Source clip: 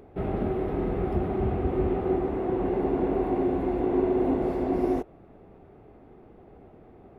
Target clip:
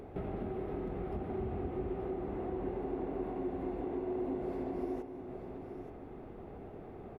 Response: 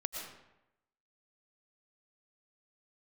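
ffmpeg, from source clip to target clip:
-filter_complex "[0:a]acompressor=threshold=-41dB:ratio=4,aecho=1:1:877:0.335,asplit=2[link_01][link_02];[1:a]atrim=start_sample=2205,asetrate=27783,aresample=44100[link_03];[link_02][link_03]afir=irnorm=-1:irlink=0,volume=-11dB[link_04];[link_01][link_04]amix=inputs=2:normalize=0"

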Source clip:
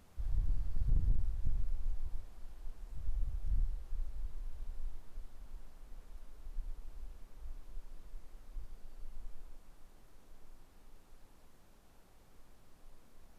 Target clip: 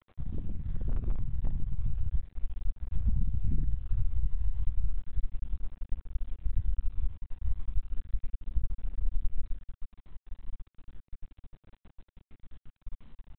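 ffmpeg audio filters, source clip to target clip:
ffmpeg -i in.wav -af "aeval=exprs='0.0708*(cos(1*acos(clip(val(0)/0.0708,-1,1)))-cos(1*PI/2))+0.00562*(cos(3*acos(clip(val(0)/0.0708,-1,1)))-cos(3*PI/2))+0.000891*(cos(6*acos(clip(val(0)/0.0708,-1,1)))-cos(6*PI/2))+0.0282*(cos(8*acos(clip(val(0)/0.0708,-1,1)))-cos(8*PI/2))':channel_layout=same,aresample=8000,aeval=exprs='val(0)*gte(abs(val(0)),0.0015)':channel_layout=same,aresample=44100,aphaser=in_gain=1:out_gain=1:delay=1.1:decay=0.27:speed=0.34:type=triangular,acompressor=threshold=-28dB:ratio=4,asubboost=boost=3:cutoff=250,volume=-2.5dB" out.wav

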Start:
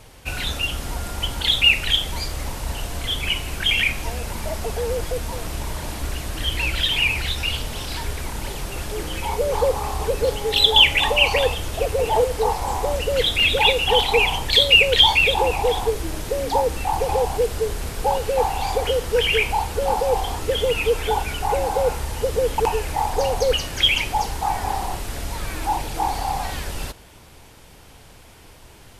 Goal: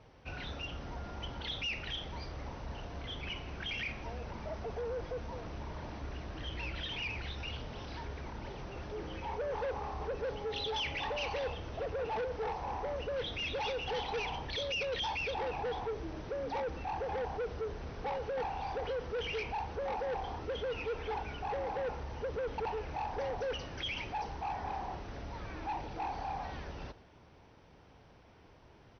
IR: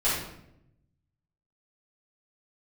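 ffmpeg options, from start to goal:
-af "highpass=frequency=82:poles=1,equalizer=frequency=5200:width_type=o:width=2.5:gain=-11.5,asoftclip=type=tanh:threshold=-23.5dB,aecho=1:1:117:0.0944,volume=-9dB" -ar 22050 -c:a mp2 -b:a 64k

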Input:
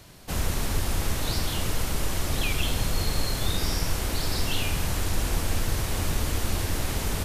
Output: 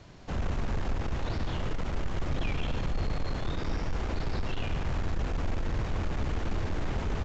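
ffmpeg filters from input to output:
ffmpeg -i in.wav -filter_complex "[0:a]acrossover=split=3200[link_01][link_02];[link_02]acompressor=threshold=-40dB:ratio=4:attack=1:release=60[link_03];[link_01][link_03]amix=inputs=2:normalize=0,highshelf=frequency=2900:gain=-10.5,aresample=16000,asoftclip=type=tanh:threshold=-24.5dB,aresample=44100,aecho=1:1:145:0.316" out.wav

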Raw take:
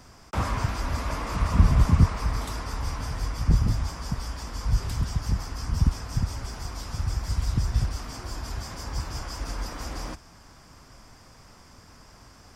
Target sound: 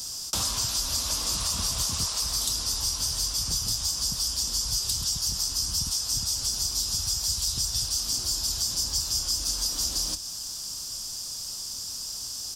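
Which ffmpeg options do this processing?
ffmpeg -i in.wav -filter_complex "[0:a]aexciter=amount=15.2:drive=6.2:freq=3300,asplit=2[link_01][link_02];[link_02]adelay=26,volume=-13dB[link_03];[link_01][link_03]amix=inputs=2:normalize=0,acrossover=split=420|7000[link_04][link_05][link_06];[link_04]acompressor=threshold=-34dB:ratio=4[link_07];[link_05]acompressor=threshold=-26dB:ratio=4[link_08];[link_06]acompressor=threshold=-32dB:ratio=4[link_09];[link_07][link_08][link_09]amix=inputs=3:normalize=0,volume=-2.5dB" out.wav

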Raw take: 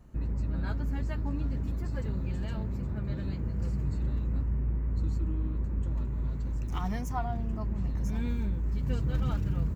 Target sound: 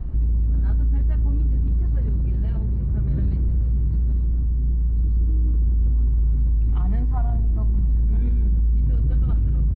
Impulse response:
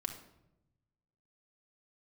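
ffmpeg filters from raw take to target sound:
-filter_complex "[0:a]aemphasis=mode=reproduction:type=riaa,acontrast=81,alimiter=limit=-19.5dB:level=0:latency=1:release=136,asplit=2[link_01][link_02];[1:a]atrim=start_sample=2205,asetrate=61740,aresample=44100[link_03];[link_02][link_03]afir=irnorm=-1:irlink=0,volume=-2.5dB[link_04];[link_01][link_04]amix=inputs=2:normalize=0,aresample=11025,aresample=44100"

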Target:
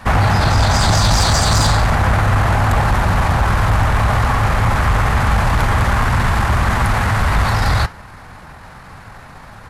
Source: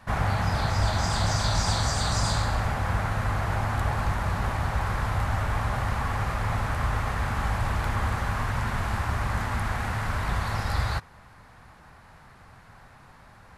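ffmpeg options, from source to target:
ffmpeg -i in.wav -af "atempo=1.4,flanger=delay=3.8:depth=3.6:regen=-88:speed=1.5:shape=triangular,aeval=exprs='0.15*sin(PI/2*2.24*val(0)/0.15)':channel_layout=same,volume=8dB" out.wav

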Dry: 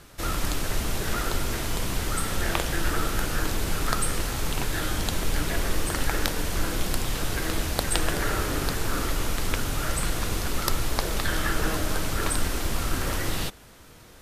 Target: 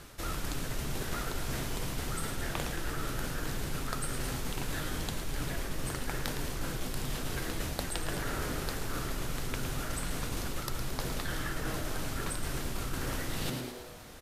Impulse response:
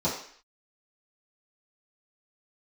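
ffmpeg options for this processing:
-filter_complex "[0:a]asplit=7[link_01][link_02][link_03][link_04][link_05][link_06][link_07];[link_02]adelay=111,afreqshift=120,volume=-10.5dB[link_08];[link_03]adelay=222,afreqshift=240,volume=-16dB[link_09];[link_04]adelay=333,afreqshift=360,volume=-21.5dB[link_10];[link_05]adelay=444,afreqshift=480,volume=-27dB[link_11];[link_06]adelay=555,afreqshift=600,volume=-32.6dB[link_12];[link_07]adelay=666,afreqshift=720,volume=-38.1dB[link_13];[link_01][link_08][link_09][link_10][link_11][link_12][link_13]amix=inputs=7:normalize=0,areverse,acompressor=threshold=-31dB:ratio=6,areverse"

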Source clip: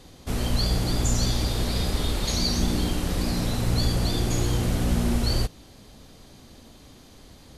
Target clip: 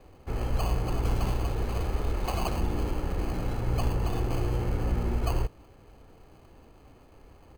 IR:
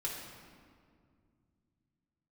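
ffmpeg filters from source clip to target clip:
-filter_complex "[0:a]aecho=1:1:2.3:0.51,acrossover=split=330|2300[link_01][link_02][link_03];[link_03]acrusher=samples=24:mix=1:aa=0.000001[link_04];[link_01][link_02][link_04]amix=inputs=3:normalize=0,volume=-5.5dB"

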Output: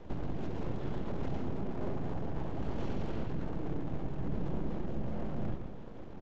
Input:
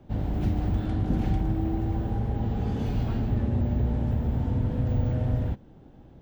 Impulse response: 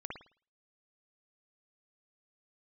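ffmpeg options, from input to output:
-af "alimiter=limit=-22dB:level=0:latency=1:release=13,acompressor=threshold=-36dB:ratio=12,aecho=1:1:122.4|271.1:0.562|0.316,asetrate=41625,aresample=44100,atempo=1.05946,aresample=16000,aeval=exprs='abs(val(0))':channel_layout=same,aresample=44100,volume=5dB"

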